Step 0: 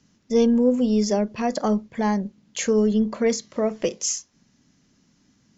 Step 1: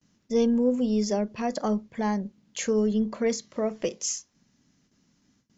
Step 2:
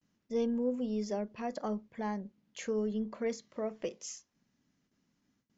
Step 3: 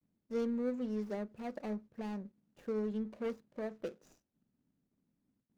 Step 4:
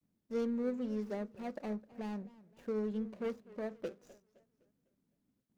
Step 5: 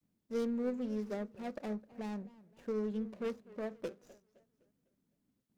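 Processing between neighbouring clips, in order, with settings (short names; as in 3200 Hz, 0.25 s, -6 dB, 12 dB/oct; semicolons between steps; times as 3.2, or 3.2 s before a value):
gate with hold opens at -53 dBFS; gain -4.5 dB
tone controls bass -3 dB, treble -7 dB; gain -8 dB
median filter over 41 samples; gain -2.5 dB
warbling echo 0.255 s, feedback 42%, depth 191 cents, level -20 dB
tracing distortion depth 0.099 ms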